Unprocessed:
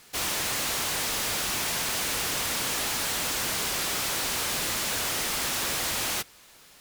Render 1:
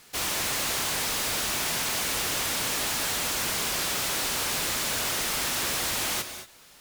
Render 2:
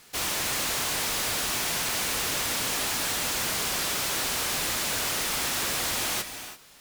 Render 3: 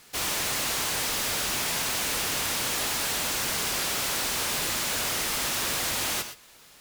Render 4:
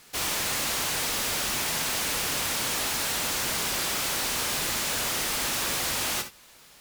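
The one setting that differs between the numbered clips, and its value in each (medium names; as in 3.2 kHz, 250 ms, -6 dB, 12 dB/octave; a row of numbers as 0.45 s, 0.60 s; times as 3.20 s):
gated-style reverb, gate: 250 ms, 360 ms, 140 ms, 90 ms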